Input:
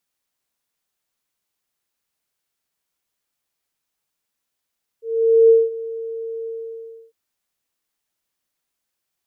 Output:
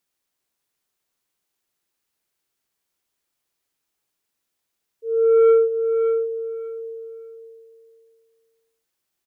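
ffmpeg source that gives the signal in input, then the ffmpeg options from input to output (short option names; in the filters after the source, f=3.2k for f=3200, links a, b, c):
-f lavfi -i "aevalsrc='0.447*sin(2*PI*454*t)':d=2.101:s=44100,afade=t=in:d=0.478,afade=t=out:st=0.478:d=0.197:silence=0.119,afade=t=out:st=1.44:d=0.661"
-af "equalizer=f=360:w=3:g=4.5,asoftclip=type=tanh:threshold=-10dB,aecho=1:1:582|1164|1746:0.422|0.0843|0.0169"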